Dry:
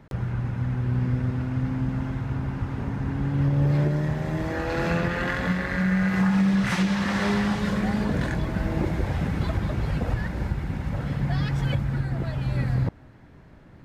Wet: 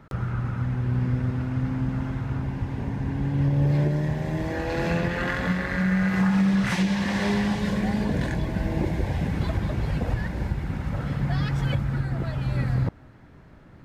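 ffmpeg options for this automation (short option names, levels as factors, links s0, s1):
-af "asetnsamples=n=441:p=0,asendcmd='0.64 equalizer g 1;2.43 equalizer g -10.5;5.18 equalizer g -0.5;6.73 equalizer g -12;9.31 equalizer g -4.5;10.65 equalizer g 3.5',equalizer=f=1300:t=o:w=0.25:g=11"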